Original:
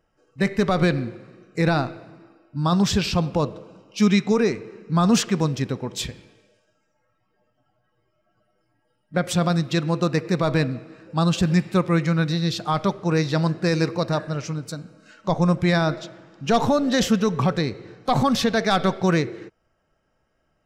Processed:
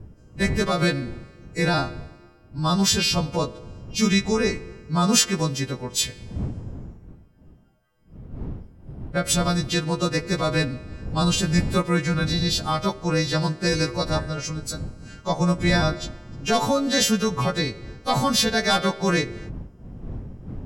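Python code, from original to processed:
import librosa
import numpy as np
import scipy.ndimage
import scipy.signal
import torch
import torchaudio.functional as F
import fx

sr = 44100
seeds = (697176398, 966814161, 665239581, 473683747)

y = fx.freq_snap(x, sr, grid_st=2)
y = fx.dmg_wind(y, sr, seeds[0], corner_hz=150.0, level_db=-34.0)
y = y * librosa.db_to_amplitude(-1.5)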